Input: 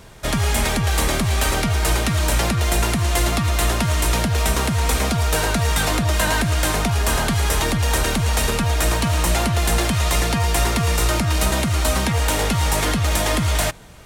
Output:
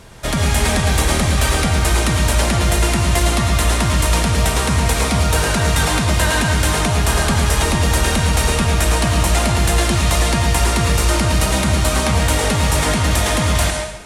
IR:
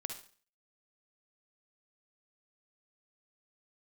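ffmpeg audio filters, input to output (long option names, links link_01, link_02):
-filter_complex "[0:a]acontrast=51[link_01];[1:a]atrim=start_sample=2205,asetrate=22932,aresample=44100[link_02];[link_01][link_02]afir=irnorm=-1:irlink=0,volume=-5dB"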